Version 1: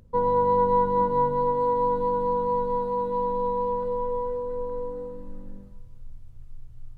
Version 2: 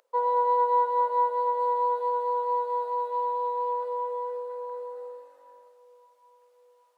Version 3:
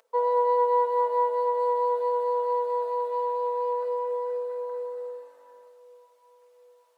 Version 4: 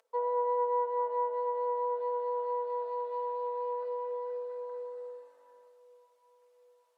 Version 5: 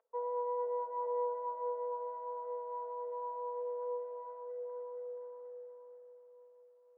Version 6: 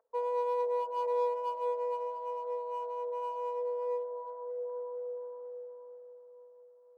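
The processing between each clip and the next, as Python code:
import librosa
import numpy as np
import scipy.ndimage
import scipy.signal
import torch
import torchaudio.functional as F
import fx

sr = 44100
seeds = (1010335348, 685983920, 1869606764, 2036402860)

y1 = scipy.signal.sosfilt(scipy.signal.butter(6, 520.0, 'highpass', fs=sr, output='sos'), x)
y1 = fx.echo_filtered(y1, sr, ms=771, feedback_pct=62, hz=2000.0, wet_db=-22.5)
y2 = y1 + 0.59 * np.pad(y1, (int(4.5 * sr / 1000.0), 0))[:len(y1)]
y2 = y2 * librosa.db_to_amplitude(2.0)
y3 = fx.env_lowpass_down(y2, sr, base_hz=1900.0, full_db=-20.5)
y3 = y3 * librosa.db_to_amplitude(-7.0)
y4 = scipy.signal.sosfilt(scipy.signal.butter(2, 1200.0, 'lowpass', fs=sr, output='sos'), y3)
y4 = fx.echo_feedback(y4, sr, ms=478, feedback_pct=40, wet_db=-4.5)
y4 = y4 * librosa.db_to_amplitude(-5.5)
y5 = fx.wiener(y4, sr, points=15)
y5 = y5 * librosa.db_to_amplitude(5.0)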